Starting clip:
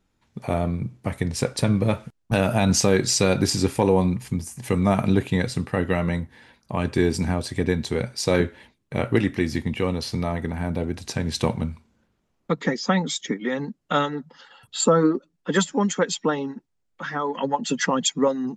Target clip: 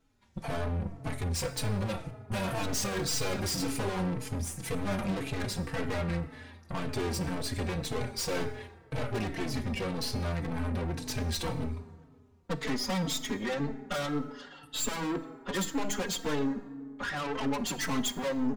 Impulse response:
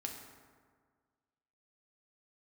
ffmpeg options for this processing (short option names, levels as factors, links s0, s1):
-filter_complex "[0:a]aeval=exprs='(tanh(44.7*val(0)+0.65)-tanh(0.65))/44.7':c=same,asplit=2[s0][s1];[1:a]atrim=start_sample=2205[s2];[s1][s2]afir=irnorm=-1:irlink=0,volume=0.75[s3];[s0][s3]amix=inputs=2:normalize=0,asplit=2[s4][s5];[s5]adelay=4.1,afreqshift=-1.9[s6];[s4][s6]amix=inputs=2:normalize=1,volume=1.26"